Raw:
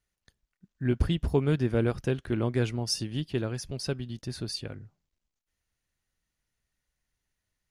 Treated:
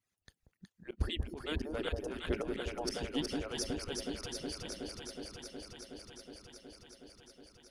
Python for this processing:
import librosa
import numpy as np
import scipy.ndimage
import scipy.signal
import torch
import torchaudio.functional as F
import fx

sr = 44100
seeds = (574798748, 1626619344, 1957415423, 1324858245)

y = fx.hpss_only(x, sr, part='percussive')
y = fx.auto_swell(y, sr, attack_ms=298.0)
y = fx.echo_alternate(y, sr, ms=184, hz=800.0, feedback_pct=89, wet_db=-3.0)
y = F.gain(torch.from_numpy(y), 1.5).numpy()